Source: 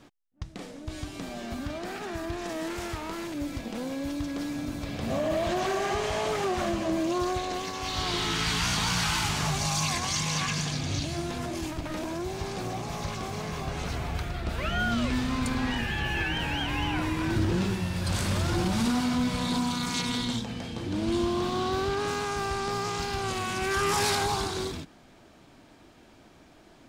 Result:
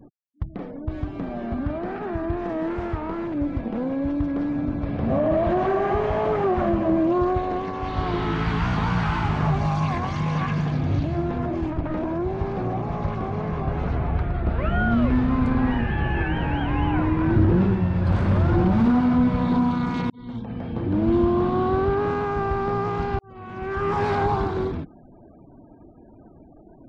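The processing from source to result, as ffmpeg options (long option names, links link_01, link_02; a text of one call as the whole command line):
ffmpeg -i in.wav -filter_complex "[0:a]asplit=3[link_01][link_02][link_03];[link_01]atrim=end=20.1,asetpts=PTS-STARTPTS,afade=type=out:start_time=20.096:duration=0.004:curve=hsin[link_04];[link_02]atrim=start=20.1:end=23.19,asetpts=PTS-STARTPTS,afade=type=in:duration=0.68,afade=type=out:start_time=3.086:duration=0.004:curve=hsin[link_05];[link_03]atrim=start=23.19,asetpts=PTS-STARTPTS,afade=type=in:duration=1[link_06];[link_04][link_05][link_06]concat=n=3:v=0:a=1,afftfilt=real='re*gte(hypot(re,im),0.00355)':imag='im*gte(hypot(re,im),0.00355)':win_size=1024:overlap=0.75,lowpass=1400,lowshelf=frequency=440:gain=3.5,volume=5.5dB" out.wav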